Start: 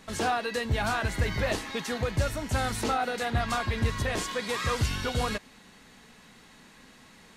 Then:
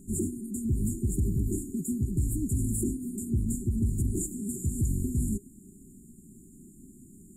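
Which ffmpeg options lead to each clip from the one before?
ffmpeg -i in.wav -af "afftfilt=real='re*(1-between(b*sr/4096,400,6800))':imag='im*(1-between(b*sr/4096,400,6800))':win_size=4096:overlap=0.75,alimiter=level_in=2dB:limit=-24dB:level=0:latency=1:release=47,volume=-2dB,volume=6.5dB" out.wav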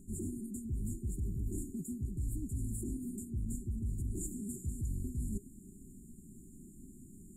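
ffmpeg -i in.wav -af "areverse,acompressor=threshold=-34dB:ratio=6,areverse,lowshelf=frequency=89:gain=8,volume=-4dB" out.wav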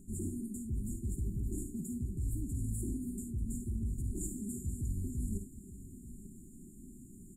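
ffmpeg -i in.wav -af "aecho=1:1:54|75|889:0.398|0.2|0.168" out.wav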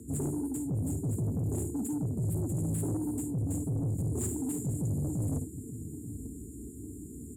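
ffmpeg -i in.wav -af "afreqshift=54,asoftclip=type=tanh:threshold=-35.5dB,volume=8.5dB" out.wav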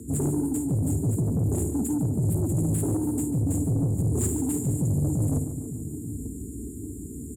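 ffmpeg -i in.wav -af "aecho=1:1:144|288|432|576|720:0.251|0.131|0.0679|0.0353|0.0184,volume=6.5dB" out.wav

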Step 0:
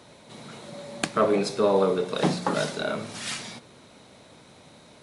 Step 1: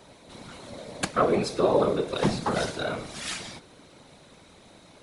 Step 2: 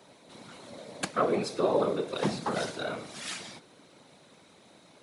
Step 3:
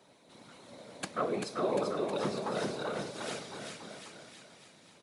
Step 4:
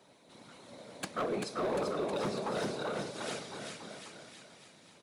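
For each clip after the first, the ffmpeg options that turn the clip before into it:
ffmpeg -i in.wav -af "afftfilt=real='hypot(re,im)*cos(2*PI*random(0))':imag='hypot(re,im)*sin(2*PI*random(1))':win_size=512:overlap=0.75,volume=5dB" out.wav
ffmpeg -i in.wav -af "highpass=140,volume=-4dB" out.wav
ffmpeg -i in.wav -af "aecho=1:1:390|741|1057|1341|1597:0.631|0.398|0.251|0.158|0.1,volume=-6dB" out.wav
ffmpeg -i in.wav -af "volume=28.5dB,asoftclip=hard,volume=-28.5dB" out.wav

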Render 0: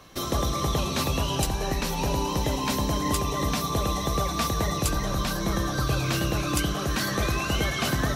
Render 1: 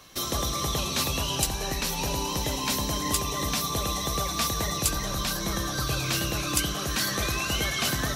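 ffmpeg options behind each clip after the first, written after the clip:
ffmpeg -i in.wav -af "highshelf=frequency=2100:gain=9.5,volume=-4.5dB" out.wav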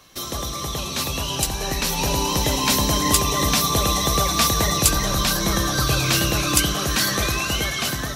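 ffmpeg -i in.wav -af "dynaudnorm=framelen=710:gausssize=5:maxgain=11.5dB" out.wav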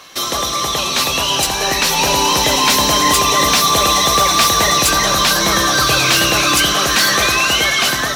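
ffmpeg -i in.wav -filter_complex "[0:a]acrusher=bits=6:mode=log:mix=0:aa=0.000001,asplit=2[link_01][link_02];[link_02]highpass=frequency=720:poles=1,volume=20dB,asoftclip=type=tanh:threshold=-2dB[link_03];[link_01][link_03]amix=inputs=2:normalize=0,lowpass=frequency=4800:poles=1,volume=-6dB" out.wav

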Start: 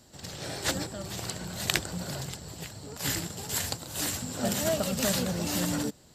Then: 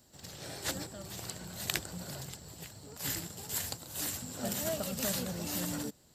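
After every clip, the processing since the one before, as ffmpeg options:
ffmpeg -i in.wav -af "highshelf=frequency=12000:gain=11,volume=-7.5dB" out.wav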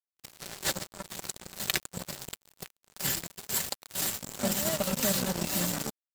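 ffmpeg -i in.wav -filter_complex "[0:a]aecho=1:1:5.2:0.49,asplit=2[link_01][link_02];[link_02]acompressor=threshold=-43dB:ratio=20,volume=1dB[link_03];[link_01][link_03]amix=inputs=2:normalize=0,acrusher=bits=4:mix=0:aa=0.5,volume=2.5dB" out.wav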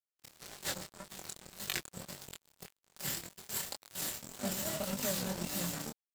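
ffmpeg -i in.wav -af "flanger=delay=20:depth=7.1:speed=1.8,volume=-4dB" out.wav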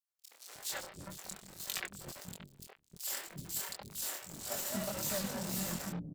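ffmpeg -i in.wav -filter_complex "[0:a]acrossover=split=370|3100[link_01][link_02][link_03];[link_02]adelay=70[link_04];[link_01]adelay=310[link_05];[link_05][link_04][link_03]amix=inputs=3:normalize=0" out.wav

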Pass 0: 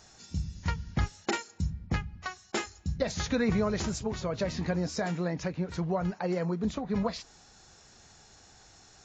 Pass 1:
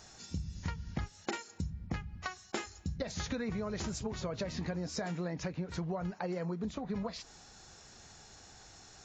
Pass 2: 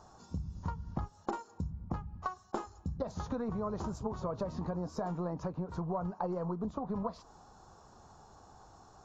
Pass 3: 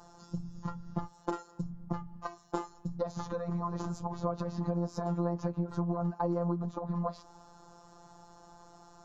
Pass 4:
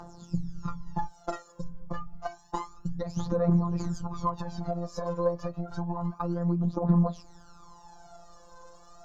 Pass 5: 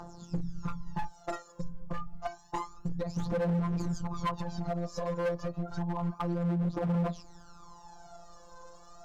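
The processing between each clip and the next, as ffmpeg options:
ffmpeg -i in.wav -af "acompressor=threshold=-35dB:ratio=6,volume=1dB" out.wav
ffmpeg -i in.wav -af "aeval=exprs='0.0944*(cos(1*acos(clip(val(0)/0.0944,-1,1)))-cos(1*PI/2))+0.00473*(cos(4*acos(clip(val(0)/0.0944,-1,1)))-cos(4*PI/2))':channel_layout=same,highshelf=frequency=1500:width_type=q:width=3:gain=-11.5" out.wav
ffmpeg -i in.wav -af "afftfilt=real='hypot(re,im)*cos(PI*b)':imag='0':win_size=1024:overlap=0.75,volume=5.5dB" out.wav
ffmpeg -i in.wav -af "aphaser=in_gain=1:out_gain=1:delay=2:decay=0.77:speed=0.29:type=triangular" out.wav
ffmpeg -i in.wav -af "volume=26.5dB,asoftclip=hard,volume=-26.5dB" out.wav

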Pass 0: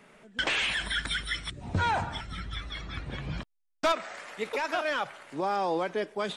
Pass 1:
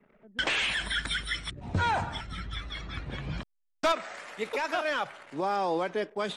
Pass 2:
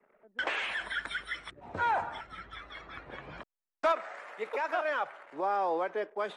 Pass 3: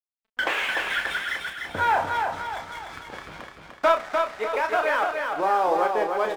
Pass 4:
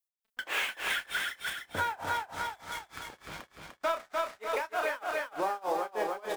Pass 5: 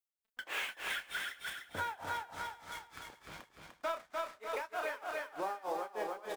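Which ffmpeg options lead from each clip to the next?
ffmpeg -i in.wav -af "anlmdn=0.00158" out.wav
ffmpeg -i in.wav -filter_complex "[0:a]acrossover=split=360 2100:gain=0.126 1 0.2[link_01][link_02][link_03];[link_01][link_02][link_03]amix=inputs=3:normalize=0" out.wav
ffmpeg -i in.wav -filter_complex "[0:a]aeval=exprs='sgn(val(0))*max(abs(val(0))-0.00335,0)':channel_layout=same,asplit=2[link_01][link_02];[link_02]adelay=32,volume=-7dB[link_03];[link_01][link_03]amix=inputs=2:normalize=0,asplit=2[link_04][link_05];[link_05]aecho=0:1:298|596|894|1192|1490|1788:0.596|0.268|0.121|0.0543|0.0244|0.011[link_06];[link_04][link_06]amix=inputs=2:normalize=0,volume=7.5dB" out.wav
ffmpeg -i in.wav -af "crystalizer=i=2:c=0,tremolo=f=3.3:d=0.97,acompressor=threshold=-25dB:ratio=6,volume=-2dB" out.wav
ffmpeg -i in.wav -af "aecho=1:1:403:0.1,volume=-6.5dB" out.wav

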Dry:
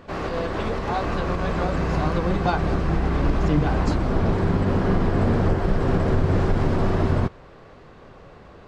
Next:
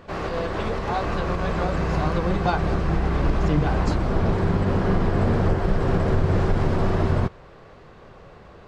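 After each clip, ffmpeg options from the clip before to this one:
ffmpeg -i in.wav -af "equalizer=frequency=270:width=4.3:gain=-4.5" out.wav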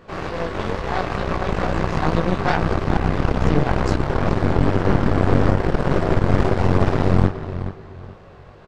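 ffmpeg -i in.wav -filter_complex "[0:a]flanger=delay=18:depth=4.7:speed=2.3,asplit=2[link_01][link_02];[link_02]adelay=424,lowpass=frequency=4400:poles=1,volume=-8.5dB,asplit=2[link_03][link_04];[link_04]adelay=424,lowpass=frequency=4400:poles=1,volume=0.33,asplit=2[link_05][link_06];[link_06]adelay=424,lowpass=frequency=4400:poles=1,volume=0.33,asplit=2[link_07][link_08];[link_08]adelay=424,lowpass=frequency=4400:poles=1,volume=0.33[link_09];[link_01][link_03][link_05][link_07][link_09]amix=inputs=5:normalize=0,aeval=exprs='0.335*(cos(1*acos(clip(val(0)/0.335,-1,1)))-cos(1*PI/2))+0.15*(cos(4*acos(clip(val(0)/0.335,-1,1)))-cos(4*PI/2))':channel_layout=same,volume=2.5dB" out.wav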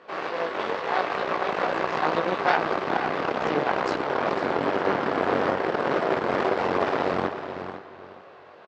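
ffmpeg -i in.wav -af "highpass=430,lowpass=4500,aecho=1:1:501:0.251" out.wav

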